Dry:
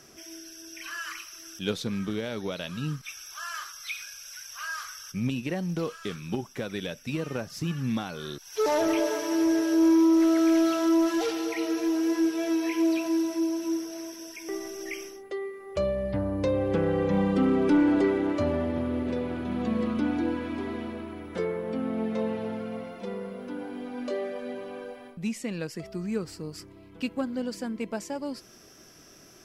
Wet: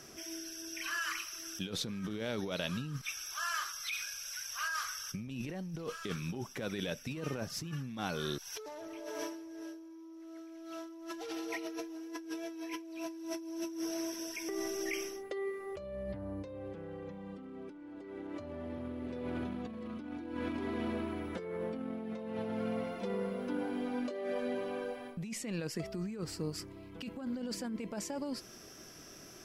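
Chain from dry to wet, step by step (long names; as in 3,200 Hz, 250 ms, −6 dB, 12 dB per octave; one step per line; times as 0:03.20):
0:05.27–0:05.93: low-shelf EQ 68 Hz +10 dB
compressor whose output falls as the input rises −35 dBFS, ratio −1
level −5.5 dB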